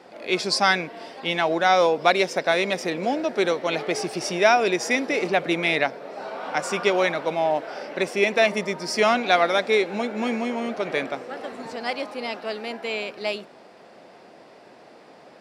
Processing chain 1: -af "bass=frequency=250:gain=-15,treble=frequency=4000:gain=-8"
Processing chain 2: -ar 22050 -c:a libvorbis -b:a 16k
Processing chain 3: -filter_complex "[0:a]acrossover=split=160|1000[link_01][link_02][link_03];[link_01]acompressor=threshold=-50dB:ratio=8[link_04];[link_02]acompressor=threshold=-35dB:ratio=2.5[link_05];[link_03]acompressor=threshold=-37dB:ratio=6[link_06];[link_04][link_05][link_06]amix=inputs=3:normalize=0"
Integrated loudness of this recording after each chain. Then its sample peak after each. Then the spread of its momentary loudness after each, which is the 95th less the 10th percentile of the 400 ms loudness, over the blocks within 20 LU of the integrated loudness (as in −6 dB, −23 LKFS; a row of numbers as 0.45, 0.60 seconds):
−24.5, −23.0, −33.0 LKFS; −4.5, −3.5, −17.5 dBFS; 13, 12, 18 LU